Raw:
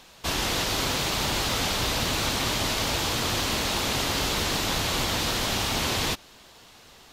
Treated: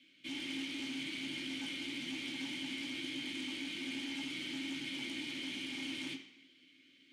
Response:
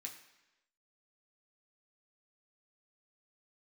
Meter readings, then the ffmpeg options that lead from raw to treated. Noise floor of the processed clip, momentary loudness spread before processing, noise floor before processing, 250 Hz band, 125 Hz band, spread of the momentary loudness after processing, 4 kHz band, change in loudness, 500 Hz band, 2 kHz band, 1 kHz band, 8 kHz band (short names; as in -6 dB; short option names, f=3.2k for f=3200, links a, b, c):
-65 dBFS, 1 LU, -52 dBFS, -8.0 dB, -26.0 dB, 1 LU, -14.0 dB, -14.5 dB, -22.5 dB, -12.5 dB, -28.5 dB, -23.0 dB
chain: -filter_complex "[0:a]asplit=3[a][b][c];[a]bandpass=f=270:t=q:w=8,volume=0dB[d];[b]bandpass=f=2.29k:t=q:w=8,volume=-6dB[e];[c]bandpass=f=3.01k:t=q:w=8,volume=-9dB[f];[d][e][f]amix=inputs=3:normalize=0,aeval=exprs='0.0473*sin(PI/2*2.51*val(0)/0.0473)':c=same[g];[1:a]atrim=start_sample=2205,asetrate=52920,aresample=44100[h];[g][h]afir=irnorm=-1:irlink=0,volume=-5.5dB"